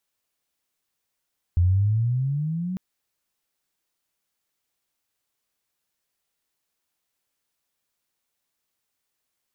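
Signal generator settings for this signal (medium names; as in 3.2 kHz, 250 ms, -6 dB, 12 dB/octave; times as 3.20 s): sweep logarithmic 85 Hz -> 190 Hz -15 dBFS -> -26 dBFS 1.20 s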